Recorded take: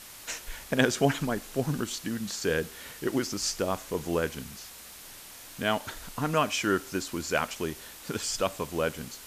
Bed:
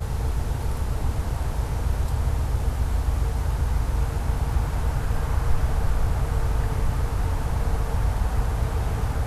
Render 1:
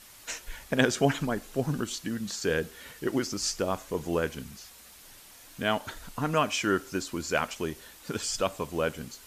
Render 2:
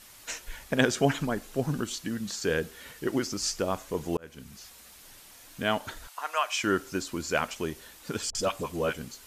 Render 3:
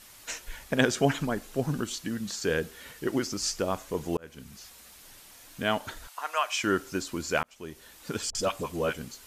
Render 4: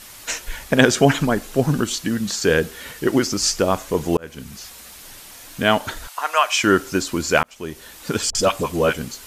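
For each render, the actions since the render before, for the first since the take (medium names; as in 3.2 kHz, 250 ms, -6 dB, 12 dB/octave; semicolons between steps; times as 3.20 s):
noise reduction 6 dB, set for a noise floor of -47 dBFS
4.17–4.65 s: fade in; 6.07–6.64 s: high-pass 700 Hz 24 dB/octave; 8.30–8.94 s: phase dispersion highs, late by 49 ms, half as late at 660 Hz
7.43–8.03 s: fade in linear
trim +10.5 dB; peak limiter -2 dBFS, peak gain reduction 1.5 dB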